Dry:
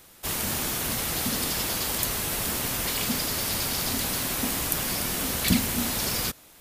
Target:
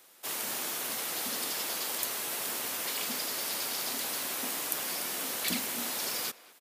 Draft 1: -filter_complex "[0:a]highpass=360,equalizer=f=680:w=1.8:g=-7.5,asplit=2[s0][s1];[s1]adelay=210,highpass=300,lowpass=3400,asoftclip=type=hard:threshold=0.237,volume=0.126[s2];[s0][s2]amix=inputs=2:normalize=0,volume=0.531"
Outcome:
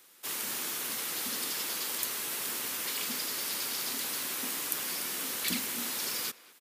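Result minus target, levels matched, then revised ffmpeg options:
500 Hz band -3.5 dB
-filter_complex "[0:a]highpass=360,asplit=2[s0][s1];[s1]adelay=210,highpass=300,lowpass=3400,asoftclip=type=hard:threshold=0.237,volume=0.126[s2];[s0][s2]amix=inputs=2:normalize=0,volume=0.531"

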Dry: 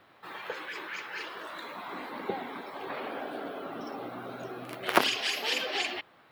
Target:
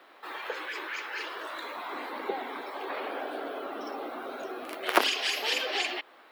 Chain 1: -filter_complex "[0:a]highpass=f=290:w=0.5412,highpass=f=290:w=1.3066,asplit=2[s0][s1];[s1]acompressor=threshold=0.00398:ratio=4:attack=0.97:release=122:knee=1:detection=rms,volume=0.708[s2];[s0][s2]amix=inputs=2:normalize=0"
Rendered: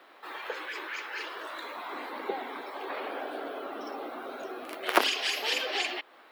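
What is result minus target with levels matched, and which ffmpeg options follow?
compression: peak gain reduction +5.5 dB
-filter_complex "[0:a]highpass=f=290:w=0.5412,highpass=f=290:w=1.3066,asplit=2[s0][s1];[s1]acompressor=threshold=0.00944:ratio=4:attack=0.97:release=122:knee=1:detection=rms,volume=0.708[s2];[s0][s2]amix=inputs=2:normalize=0"

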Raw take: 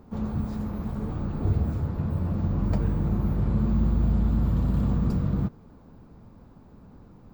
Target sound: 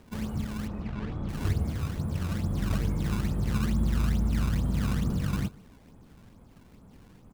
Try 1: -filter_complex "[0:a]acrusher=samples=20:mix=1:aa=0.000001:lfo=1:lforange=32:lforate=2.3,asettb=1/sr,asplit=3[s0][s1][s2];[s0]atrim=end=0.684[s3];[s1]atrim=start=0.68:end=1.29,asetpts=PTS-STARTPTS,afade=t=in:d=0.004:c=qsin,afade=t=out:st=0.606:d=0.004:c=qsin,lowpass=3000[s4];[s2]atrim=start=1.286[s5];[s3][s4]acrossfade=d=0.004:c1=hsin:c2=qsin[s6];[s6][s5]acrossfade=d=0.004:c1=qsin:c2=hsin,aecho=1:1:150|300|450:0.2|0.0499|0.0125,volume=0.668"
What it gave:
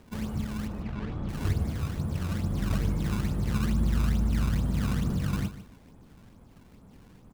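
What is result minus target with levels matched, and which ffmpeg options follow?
echo-to-direct +9.5 dB
-filter_complex "[0:a]acrusher=samples=20:mix=1:aa=0.000001:lfo=1:lforange=32:lforate=2.3,asettb=1/sr,asplit=3[s0][s1][s2];[s0]atrim=end=0.684[s3];[s1]atrim=start=0.68:end=1.29,asetpts=PTS-STARTPTS,afade=t=in:d=0.004:c=qsin,afade=t=out:st=0.606:d=0.004:c=qsin,lowpass=3000[s4];[s2]atrim=start=1.286[s5];[s3][s4]acrossfade=d=0.004:c1=hsin:c2=qsin[s6];[s6][s5]acrossfade=d=0.004:c1=qsin:c2=hsin,aecho=1:1:150|300:0.0668|0.0167,volume=0.668"

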